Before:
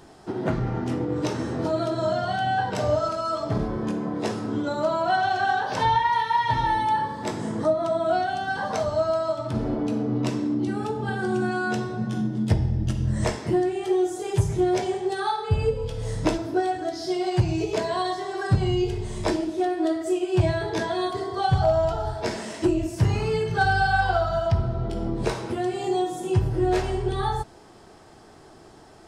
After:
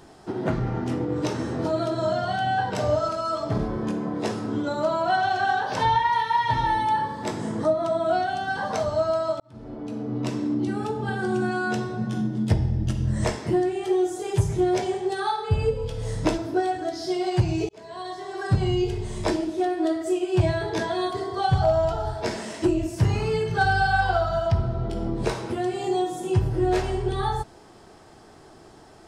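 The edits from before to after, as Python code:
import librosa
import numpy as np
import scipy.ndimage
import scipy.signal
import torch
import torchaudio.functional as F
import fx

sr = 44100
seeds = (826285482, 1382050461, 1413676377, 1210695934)

y = fx.edit(x, sr, fx.fade_in_span(start_s=9.4, length_s=1.12),
    fx.fade_in_span(start_s=17.69, length_s=0.92), tone=tone)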